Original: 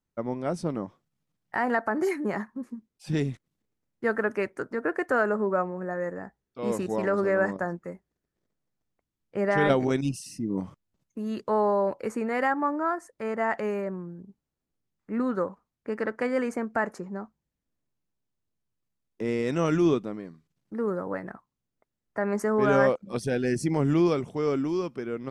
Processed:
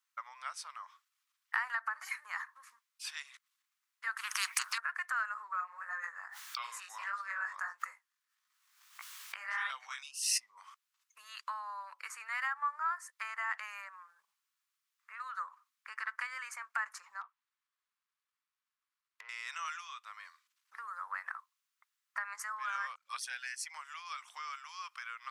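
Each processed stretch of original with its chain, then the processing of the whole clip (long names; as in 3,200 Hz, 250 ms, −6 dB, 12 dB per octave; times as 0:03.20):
0:04.17–0:04.78: upward compression, threshold −30 dBFS + notch filter 7,300 Hz, Q 18 + every bin compressed towards the loudest bin 10 to 1
0:05.34–0:10.57: chorus effect 1.6 Hz, delay 15 ms, depth 6.9 ms + background raised ahead of every attack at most 50 dB per second
0:17.21–0:19.29: running median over 15 samples + treble cut that deepens with the level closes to 1,400 Hz, closed at −38.5 dBFS
whole clip: downward compressor 10 to 1, threshold −33 dBFS; elliptic high-pass filter 1,100 Hz, stop band 70 dB; level +7.5 dB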